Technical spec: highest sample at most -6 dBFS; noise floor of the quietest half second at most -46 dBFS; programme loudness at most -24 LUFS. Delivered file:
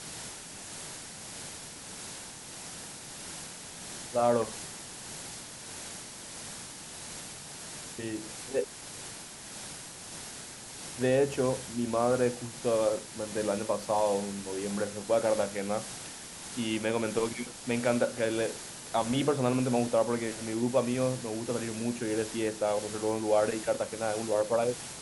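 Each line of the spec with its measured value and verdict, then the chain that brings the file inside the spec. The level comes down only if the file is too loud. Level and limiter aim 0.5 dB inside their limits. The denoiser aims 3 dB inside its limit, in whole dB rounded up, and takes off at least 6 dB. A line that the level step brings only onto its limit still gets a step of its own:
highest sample -13.0 dBFS: OK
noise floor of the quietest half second -44 dBFS: fail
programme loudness -32.0 LUFS: OK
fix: denoiser 6 dB, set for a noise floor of -44 dBFS

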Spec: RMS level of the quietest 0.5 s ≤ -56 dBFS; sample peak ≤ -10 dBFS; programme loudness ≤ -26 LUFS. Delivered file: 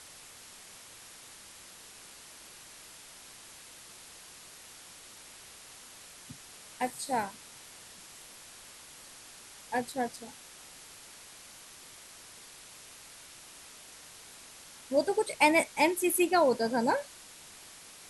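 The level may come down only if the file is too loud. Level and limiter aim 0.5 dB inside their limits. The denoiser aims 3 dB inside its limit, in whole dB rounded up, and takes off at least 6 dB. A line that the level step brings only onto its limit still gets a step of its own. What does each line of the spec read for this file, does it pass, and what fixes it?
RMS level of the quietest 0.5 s -51 dBFS: fail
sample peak -10.5 dBFS: OK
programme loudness -29.0 LUFS: OK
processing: denoiser 8 dB, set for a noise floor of -51 dBFS

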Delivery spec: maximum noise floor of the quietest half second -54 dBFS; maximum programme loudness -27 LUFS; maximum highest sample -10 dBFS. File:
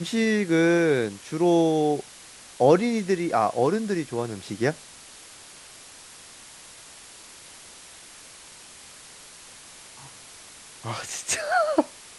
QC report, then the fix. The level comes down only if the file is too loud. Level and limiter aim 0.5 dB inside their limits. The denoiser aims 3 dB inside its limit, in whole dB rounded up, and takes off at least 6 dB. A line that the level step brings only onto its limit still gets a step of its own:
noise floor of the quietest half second -47 dBFS: fail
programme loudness -24.0 LUFS: fail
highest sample -6.0 dBFS: fail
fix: denoiser 7 dB, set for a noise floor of -47 dBFS; gain -3.5 dB; limiter -10.5 dBFS

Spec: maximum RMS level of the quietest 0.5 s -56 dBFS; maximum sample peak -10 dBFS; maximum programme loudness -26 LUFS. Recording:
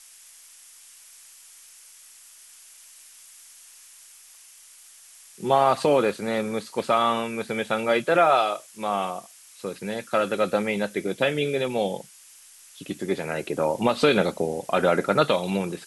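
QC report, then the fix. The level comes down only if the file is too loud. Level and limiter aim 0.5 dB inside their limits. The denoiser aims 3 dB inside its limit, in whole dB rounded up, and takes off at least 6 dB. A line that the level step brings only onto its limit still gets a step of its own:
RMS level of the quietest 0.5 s -50 dBFS: fail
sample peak -6.5 dBFS: fail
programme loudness -24.0 LUFS: fail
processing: denoiser 7 dB, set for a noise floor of -50 dBFS; gain -2.5 dB; limiter -10.5 dBFS

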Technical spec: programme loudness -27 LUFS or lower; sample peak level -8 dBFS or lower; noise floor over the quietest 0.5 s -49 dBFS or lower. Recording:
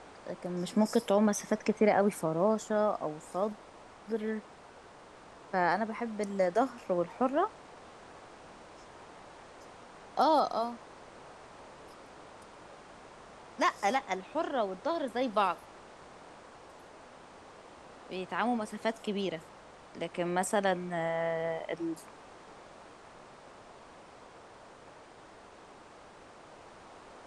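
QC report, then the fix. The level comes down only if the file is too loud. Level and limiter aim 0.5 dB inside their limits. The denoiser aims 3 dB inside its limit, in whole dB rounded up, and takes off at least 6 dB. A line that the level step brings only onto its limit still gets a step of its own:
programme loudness -32.0 LUFS: OK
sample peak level -14.0 dBFS: OK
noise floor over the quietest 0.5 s -53 dBFS: OK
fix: none

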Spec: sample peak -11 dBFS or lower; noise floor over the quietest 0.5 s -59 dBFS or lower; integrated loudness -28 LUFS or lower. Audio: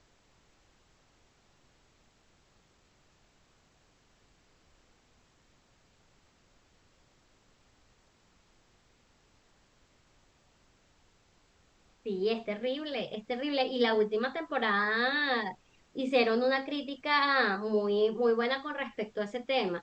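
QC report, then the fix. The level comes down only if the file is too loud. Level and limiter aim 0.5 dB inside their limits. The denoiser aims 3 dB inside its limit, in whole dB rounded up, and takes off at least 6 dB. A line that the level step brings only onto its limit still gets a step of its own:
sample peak -14.5 dBFS: OK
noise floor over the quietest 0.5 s -67 dBFS: OK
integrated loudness -30.0 LUFS: OK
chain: none

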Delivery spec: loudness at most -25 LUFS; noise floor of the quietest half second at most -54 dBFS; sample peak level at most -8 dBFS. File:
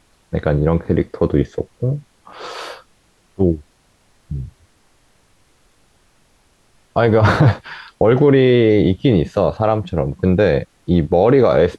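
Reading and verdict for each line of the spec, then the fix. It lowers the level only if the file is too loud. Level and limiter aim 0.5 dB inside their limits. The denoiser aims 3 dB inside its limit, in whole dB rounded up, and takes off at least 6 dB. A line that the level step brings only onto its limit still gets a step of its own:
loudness -16.0 LUFS: fail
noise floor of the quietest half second -57 dBFS: OK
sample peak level -3.0 dBFS: fail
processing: gain -9.5 dB

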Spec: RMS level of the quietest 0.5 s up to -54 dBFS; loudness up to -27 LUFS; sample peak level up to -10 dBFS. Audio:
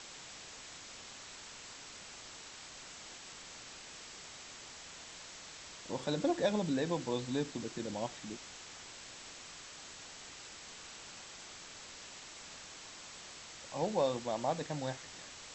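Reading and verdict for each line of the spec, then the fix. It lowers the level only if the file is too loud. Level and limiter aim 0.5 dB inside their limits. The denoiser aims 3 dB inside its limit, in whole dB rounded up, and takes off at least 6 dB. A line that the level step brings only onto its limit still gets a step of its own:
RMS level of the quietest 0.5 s -51 dBFS: fail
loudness -41.0 LUFS: OK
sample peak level -20.0 dBFS: OK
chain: denoiser 6 dB, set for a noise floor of -51 dBFS

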